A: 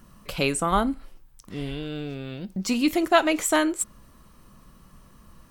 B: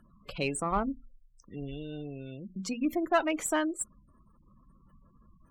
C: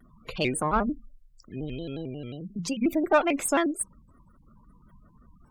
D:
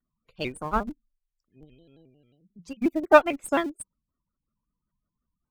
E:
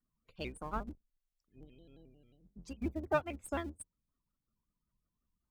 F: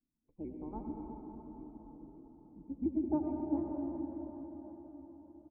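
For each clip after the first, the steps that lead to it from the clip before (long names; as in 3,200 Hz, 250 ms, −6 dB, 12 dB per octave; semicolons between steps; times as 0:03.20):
gate on every frequency bin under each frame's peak −20 dB strong; mains-hum notches 60/120/180/240 Hz; harmonic generator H 8 −32 dB, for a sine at −4.5 dBFS; level −7 dB
pitch modulation by a square or saw wave square 5.6 Hz, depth 160 cents; level +4.5 dB
in parallel at −11 dB: comparator with hysteresis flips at −24 dBFS; on the sum: expander for the loud parts 2.5 to 1, over −39 dBFS; level +7 dB
sub-octave generator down 2 octaves, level −1 dB; downward compressor 1.5 to 1, threshold −46 dBFS, peak gain reduction 13 dB; level −4 dB
formant resonators in series u; repeating echo 573 ms, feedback 47%, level −14 dB; convolution reverb RT60 4.4 s, pre-delay 78 ms, DRR 0 dB; level +7.5 dB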